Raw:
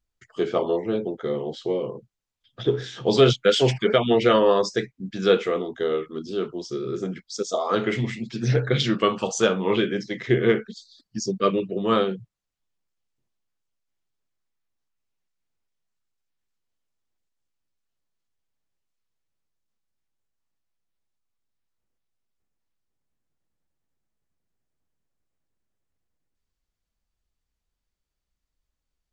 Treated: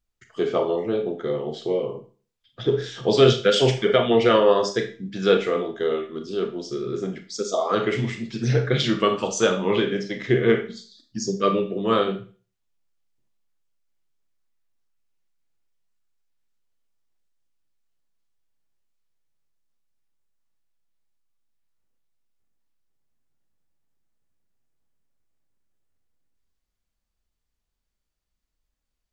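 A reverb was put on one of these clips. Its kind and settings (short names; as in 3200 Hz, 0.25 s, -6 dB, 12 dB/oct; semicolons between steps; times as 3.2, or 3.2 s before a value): Schroeder reverb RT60 0.38 s, combs from 27 ms, DRR 6.5 dB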